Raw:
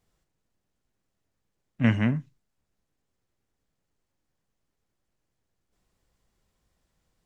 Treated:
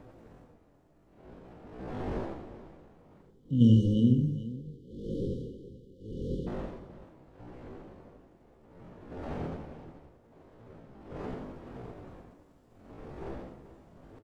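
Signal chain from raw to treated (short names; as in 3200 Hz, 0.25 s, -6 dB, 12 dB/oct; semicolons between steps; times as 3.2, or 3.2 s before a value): wind noise 460 Hz -42 dBFS; de-hum 69.76 Hz, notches 19; spectral delete 1.65–3.31, 540–2900 Hz; tempo 0.51×; tapped delay 81/431 ms -6.5/-15 dB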